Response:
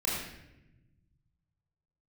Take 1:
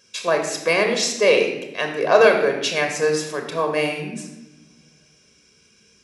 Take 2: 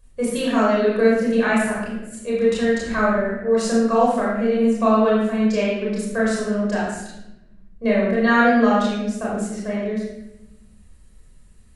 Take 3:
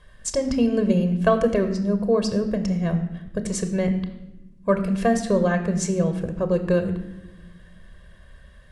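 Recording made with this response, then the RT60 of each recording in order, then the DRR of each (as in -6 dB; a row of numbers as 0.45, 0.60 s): 2; not exponential, 0.95 s, not exponential; 3.0, -6.5, 7.5 dB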